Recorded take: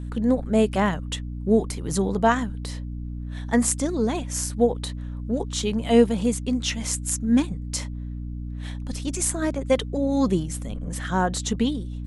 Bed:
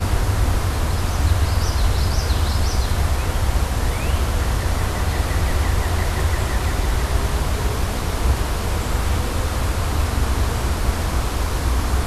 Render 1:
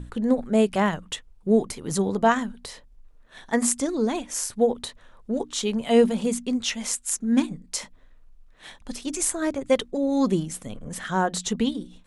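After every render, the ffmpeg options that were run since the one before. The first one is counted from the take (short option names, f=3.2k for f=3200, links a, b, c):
-af "bandreject=f=60:t=h:w=6,bandreject=f=120:t=h:w=6,bandreject=f=180:t=h:w=6,bandreject=f=240:t=h:w=6,bandreject=f=300:t=h:w=6"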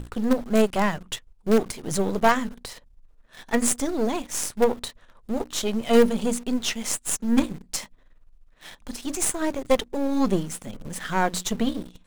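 -filter_complex "[0:a]aeval=exprs='if(lt(val(0),0),0.447*val(0),val(0))':c=same,asplit=2[a][b];[b]acrusher=bits=4:dc=4:mix=0:aa=0.000001,volume=-6dB[c];[a][c]amix=inputs=2:normalize=0"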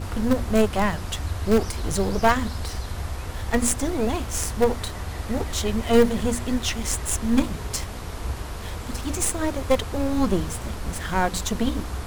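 -filter_complex "[1:a]volume=-11dB[a];[0:a][a]amix=inputs=2:normalize=0"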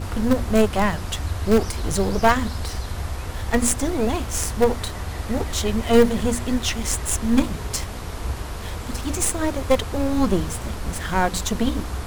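-af "volume=2dB"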